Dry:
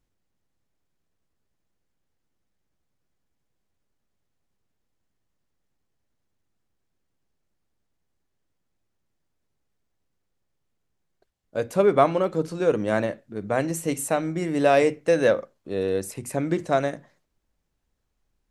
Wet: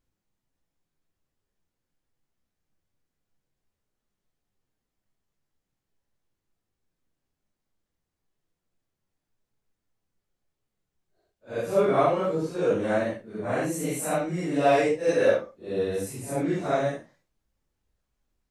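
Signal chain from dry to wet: phase scrambler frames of 0.2 s; gain -2 dB

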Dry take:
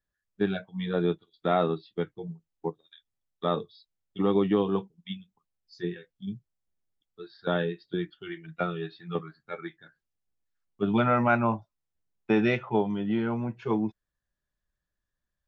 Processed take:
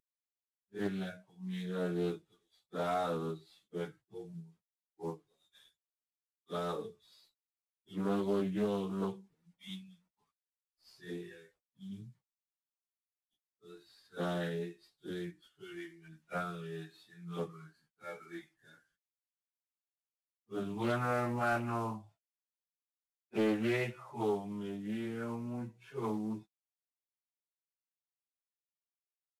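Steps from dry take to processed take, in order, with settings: CVSD 64 kbps; plain phase-vocoder stretch 1.9×; Doppler distortion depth 0.25 ms; gain -6.5 dB

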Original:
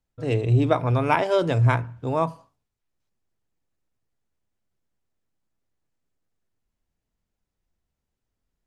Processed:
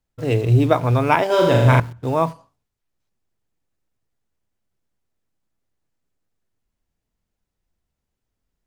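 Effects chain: in parallel at -11 dB: bit-crush 6-bit; 1.26–1.8 on the sum: flutter echo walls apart 6.8 m, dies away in 1.1 s; gain +2 dB

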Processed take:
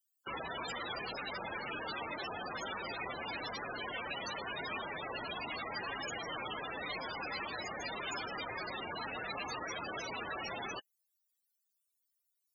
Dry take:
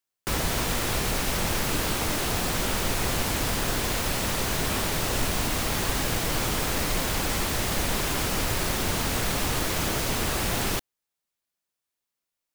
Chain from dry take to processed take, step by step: loudest bins only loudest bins 32; differentiator; gain +12 dB

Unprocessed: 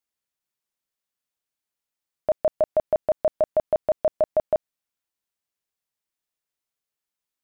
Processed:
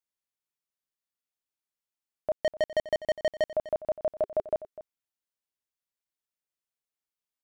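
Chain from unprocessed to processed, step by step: 2.33–3.45 sample leveller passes 3; 4.1–4.55 bell 400 Hz +5.5 dB 0.41 oct; echo 0.25 s -16 dB; gain -7 dB

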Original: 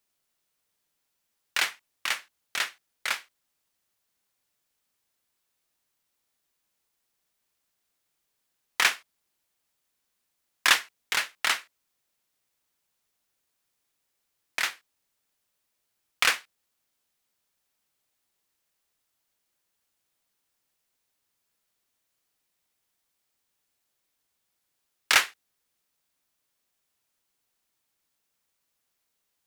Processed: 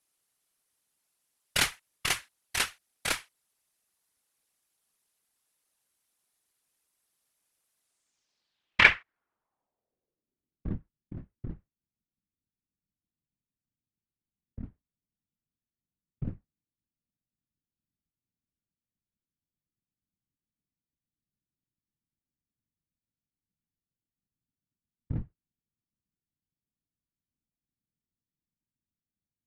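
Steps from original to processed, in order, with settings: added harmonics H 6 -13 dB, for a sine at -4.5 dBFS; low-pass sweep 11000 Hz -> 160 Hz, 7.8–10.78; whisperiser; gain -2 dB

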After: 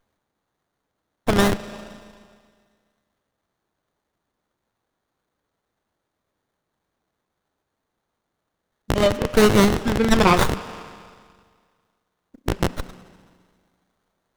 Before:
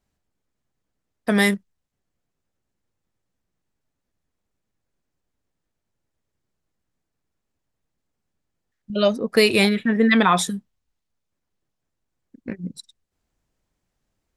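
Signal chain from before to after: rattling part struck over -31 dBFS, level -12 dBFS; spring tank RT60 1.9 s, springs 33 ms, chirp 40 ms, DRR 13 dB; in parallel at 0 dB: compressor, threshold -30 dBFS, peak gain reduction 17.5 dB; on the sum: tilt +3 dB/oct; running maximum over 17 samples

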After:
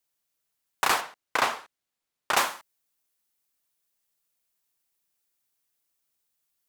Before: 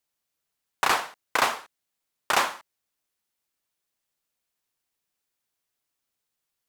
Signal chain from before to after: high shelf 7000 Hz +5.5 dB, from 1.01 s -4.5 dB, from 2.37 s +8.5 dB; gain -1.5 dB

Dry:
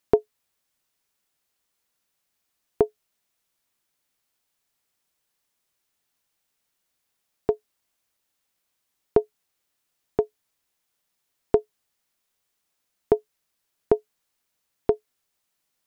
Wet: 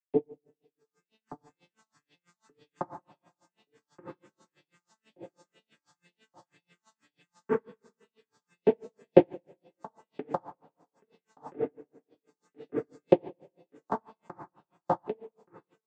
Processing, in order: arpeggiated vocoder minor triad, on D3, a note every 0.212 s; recorder AGC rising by 25 dB/s; low shelf 310 Hz -9.5 dB; on a send: feedback echo 1.176 s, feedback 25%, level -4 dB; on the sum: phaser stages 4, 2 Hz, lowest notch 390–1300 Hz; two-slope reverb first 0.37 s, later 1.6 s, from -26 dB, DRR -4.5 dB; dB-linear tremolo 6.1 Hz, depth 34 dB; gain -4 dB

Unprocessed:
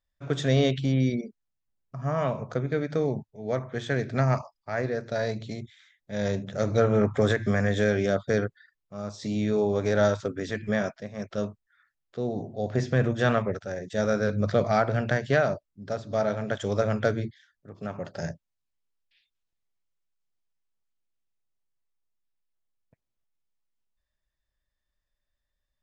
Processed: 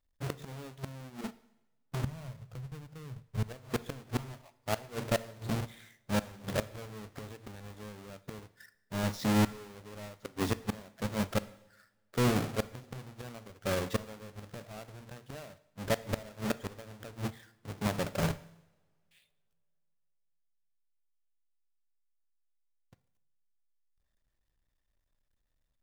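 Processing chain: half-waves squared off; 2.04–3.43 resonant low shelf 180 Hz +10.5 dB, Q 1.5; flipped gate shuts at -19 dBFS, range -26 dB; two-slope reverb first 0.85 s, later 3.1 s, from -26 dB, DRR 15 dB; gain -2 dB

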